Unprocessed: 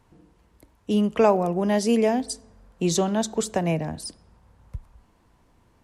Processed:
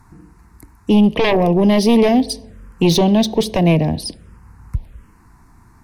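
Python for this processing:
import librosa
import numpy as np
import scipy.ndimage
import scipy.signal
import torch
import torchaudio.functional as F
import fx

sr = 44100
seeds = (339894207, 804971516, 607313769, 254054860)

y = fx.fold_sine(x, sr, drive_db=10, ceiling_db=-7.0)
y = fx.env_phaser(y, sr, low_hz=510.0, high_hz=1400.0, full_db=-18.0)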